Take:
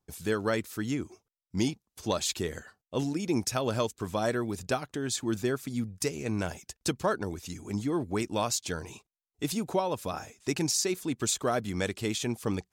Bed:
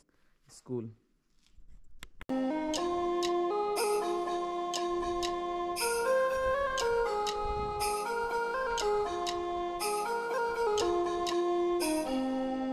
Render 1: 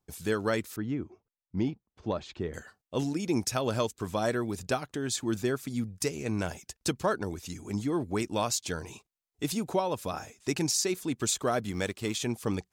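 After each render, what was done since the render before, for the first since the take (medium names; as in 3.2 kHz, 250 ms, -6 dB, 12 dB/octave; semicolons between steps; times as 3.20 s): 0.76–2.54 s: tape spacing loss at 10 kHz 36 dB; 11.71–12.16 s: companding laws mixed up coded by A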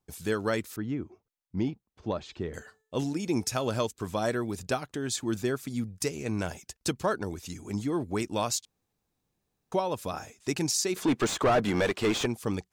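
2.17–3.71 s: de-hum 436.3 Hz, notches 36; 8.65–9.72 s: room tone; 10.96–12.26 s: overdrive pedal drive 26 dB, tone 1.4 kHz, clips at -14.5 dBFS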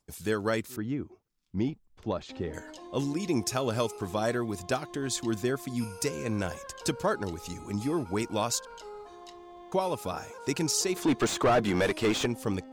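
add bed -14 dB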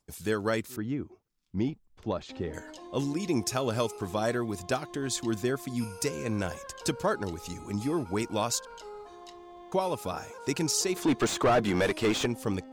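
no audible change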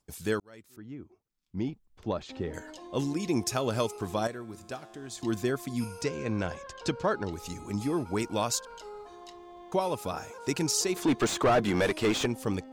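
0.40–2.11 s: fade in; 4.27–5.22 s: feedback comb 110 Hz, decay 1.9 s, mix 70%; 6.01–7.33 s: low-pass 5 kHz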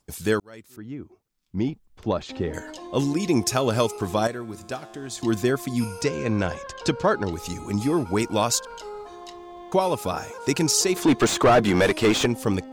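trim +7 dB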